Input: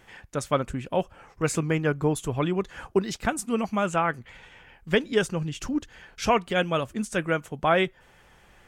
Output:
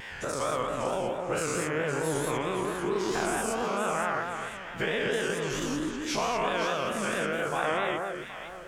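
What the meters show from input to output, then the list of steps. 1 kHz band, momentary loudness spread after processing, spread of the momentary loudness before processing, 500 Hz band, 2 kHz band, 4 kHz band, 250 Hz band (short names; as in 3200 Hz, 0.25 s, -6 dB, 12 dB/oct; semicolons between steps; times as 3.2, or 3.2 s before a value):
-1.5 dB, 5 LU, 8 LU, -2.5 dB, -0.5 dB, -1.0 dB, -5.0 dB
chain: spectral dilation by 0.24 s; low shelf 250 Hz -7 dB; compressor 2.5:1, threshold -33 dBFS, peak gain reduction 14 dB; echo with dull and thin repeats by turns 0.258 s, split 1600 Hz, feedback 56%, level -3.5 dB; vibrato 4.5 Hz 95 cents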